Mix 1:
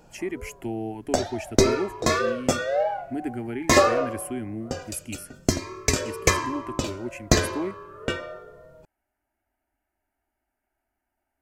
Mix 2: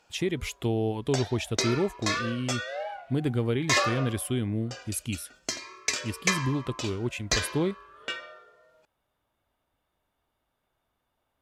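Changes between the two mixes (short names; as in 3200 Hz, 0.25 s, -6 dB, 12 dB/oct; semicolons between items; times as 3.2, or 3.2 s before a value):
speech: remove fixed phaser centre 740 Hz, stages 8; background: add band-pass 3100 Hz, Q 0.74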